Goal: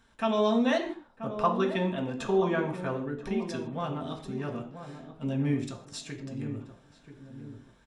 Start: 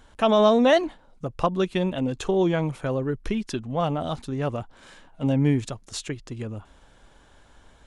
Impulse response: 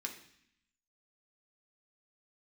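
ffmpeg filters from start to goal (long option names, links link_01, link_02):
-filter_complex "[0:a]asettb=1/sr,asplit=3[link_01][link_02][link_03];[link_01]atrim=end=0.834[link_04];[link_02]atrim=start=0.83:end=2.93,asetpts=PTS-STARTPTS,afade=type=in:duration=0.004:curve=qsin,afade=type=out:start_time=2.096:duration=0.004:curve=qsin,equalizer=frequency=930:width_type=o:width=2:gain=8.5[link_05];[link_03]atrim=start=2.926[link_06];[link_04][link_05]acrossfade=duration=0.004:curve1=hsin:curve2=qsin[link_07];[link_07][link_06]acrossfade=duration=0.004:curve1=qsin:curve2=hsin,asplit=2[link_08][link_09];[link_09]adelay=982,lowpass=frequency=870:poles=1,volume=-9dB,asplit=2[link_10][link_11];[link_11]adelay=982,lowpass=frequency=870:poles=1,volume=0.38,asplit=2[link_12][link_13];[link_13]adelay=982,lowpass=frequency=870:poles=1,volume=0.38,asplit=2[link_14][link_15];[link_15]adelay=982,lowpass=frequency=870:poles=1,volume=0.38[link_16];[link_08][link_10][link_12][link_14][link_16]amix=inputs=5:normalize=0[link_17];[1:a]atrim=start_sample=2205,afade=type=out:start_time=0.21:duration=0.01,atrim=end_sample=9702[link_18];[link_17][link_18]afir=irnorm=-1:irlink=0,volume=-6dB"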